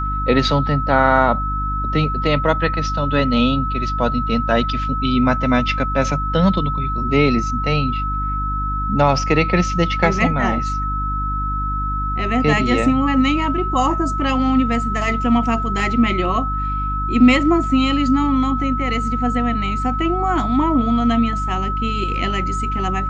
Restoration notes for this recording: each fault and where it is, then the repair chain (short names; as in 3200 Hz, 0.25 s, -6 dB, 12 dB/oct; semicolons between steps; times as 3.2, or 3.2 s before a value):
hum 50 Hz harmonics 6 -24 dBFS
tone 1300 Hz -22 dBFS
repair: de-hum 50 Hz, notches 6; notch 1300 Hz, Q 30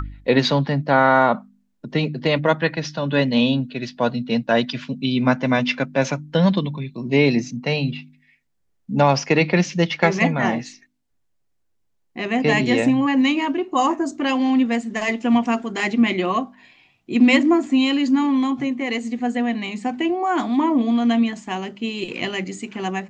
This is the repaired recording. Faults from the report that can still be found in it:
none